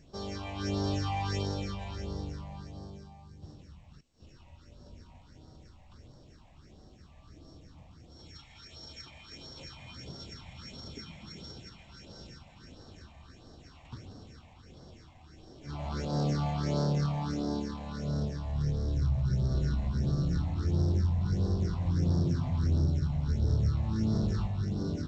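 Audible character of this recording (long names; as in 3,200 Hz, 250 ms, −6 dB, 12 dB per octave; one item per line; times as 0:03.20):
a buzz of ramps at a fixed pitch in blocks of 8 samples
phaser sweep stages 6, 1.5 Hz, lowest notch 370–2,400 Hz
G.722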